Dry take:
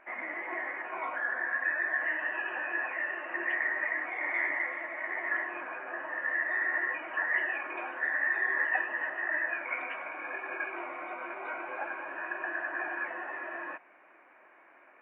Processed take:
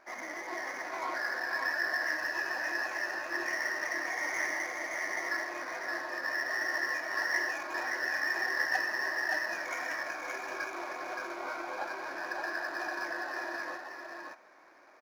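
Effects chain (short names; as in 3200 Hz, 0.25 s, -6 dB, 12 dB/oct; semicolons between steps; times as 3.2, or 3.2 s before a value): median filter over 15 samples; on a send: echo 0.571 s -3.5 dB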